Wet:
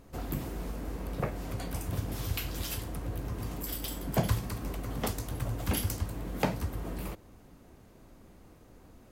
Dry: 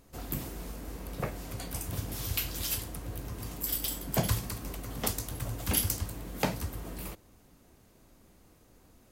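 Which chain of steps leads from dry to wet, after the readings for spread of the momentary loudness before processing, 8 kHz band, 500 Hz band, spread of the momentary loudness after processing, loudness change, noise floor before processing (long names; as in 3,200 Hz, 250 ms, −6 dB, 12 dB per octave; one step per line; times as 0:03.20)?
12 LU, −6.0 dB, +2.0 dB, 7 LU, −1.0 dB, −61 dBFS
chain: in parallel at −1 dB: downward compressor, threshold −40 dBFS, peak gain reduction 16.5 dB
on the sum: high-shelf EQ 3,000 Hz −9 dB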